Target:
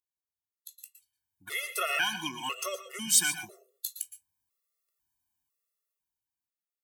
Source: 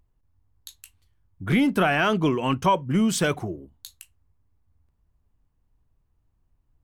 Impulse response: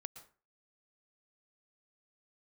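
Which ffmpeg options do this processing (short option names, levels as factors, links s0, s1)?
-filter_complex "[0:a]aderivative[s0];[1:a]atrim=start_sample=2205,afade=t=out:st=0.2:d=0.01,atrim=end_sample=9261[s1];[s0][s1]afir=irnorm=-1:irlink=0,dynaudnorm=f=200:g=13:m=5.96,afftfilt=real='re*gt(sin(2*PI*1*pts/sr)*(1-2*mod(floor(b*sr/1024/360),2)),0)':imag='im*gt(sin(2*PI*1*pts/sr)*(1-2*mod(floor(b*sr/1024/360),2)),0)':win_size=1024:overlap=0.75"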